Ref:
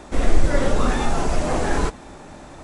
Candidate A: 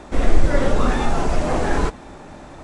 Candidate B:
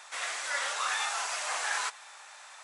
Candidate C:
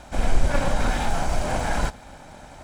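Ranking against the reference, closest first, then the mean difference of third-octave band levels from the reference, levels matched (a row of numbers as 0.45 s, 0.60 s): A, C, B; 1.0 dB, 4.0 dB, 15.5 dB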